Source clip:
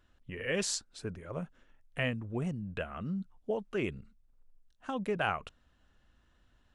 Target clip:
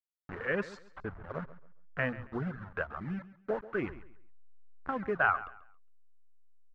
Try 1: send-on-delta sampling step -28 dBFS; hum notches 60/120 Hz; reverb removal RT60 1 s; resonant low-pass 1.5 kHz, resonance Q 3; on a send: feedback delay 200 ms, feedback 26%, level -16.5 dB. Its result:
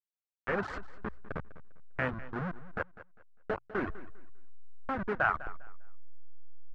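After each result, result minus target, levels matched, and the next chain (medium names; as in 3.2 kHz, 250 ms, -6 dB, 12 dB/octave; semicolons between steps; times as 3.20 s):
send-on-delta sampling: distortion +16 dB; echo 63 ms late
send-on-delta sampling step -38 dBFS; hum notches 60/120 Hz; reverb removal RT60 1 s; resonant low-pass 1.5 kHz, resonance Q 3; on a send: feedback delay 200 ms, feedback 26%, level -16.5 dB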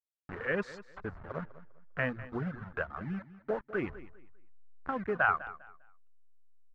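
echo 63 ms late
send-on-delta sampling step -38 dBFS; hum notches 60/120 Hz; reverb removal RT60 1 s; resonant low-pass 1.5 kHz, resonance Q 3; on a send: feedback delay 137 ms, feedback 26%, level -16.5 dB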